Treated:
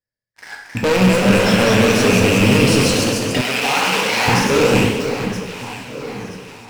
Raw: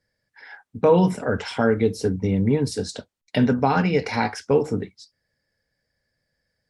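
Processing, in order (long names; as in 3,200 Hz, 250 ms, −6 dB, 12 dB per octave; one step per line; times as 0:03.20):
loose part that buzzes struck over −28 dBFS, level −13 dBFS
leveller curve on the samples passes 5
delay that swaps between a low-pass and a high-pass 488 ms, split 1,500 Hz, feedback 68%, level −9.5 dB
dense smooth reverb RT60 1.1 s, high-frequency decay 1×, DRR 0.5 dB
delay with pitch and tempo change per echo 292 ms, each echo +1 semitone, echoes 3
0:03.41–0:04.28: high-pass filter 960 Hz 6 dB per octave
level −8.5 dB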